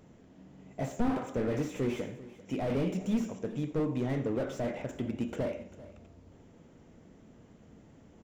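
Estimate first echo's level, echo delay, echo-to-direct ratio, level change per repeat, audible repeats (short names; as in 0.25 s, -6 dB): -19.5 dB, 86 ms, -15.5 dB, no steady repeat, 2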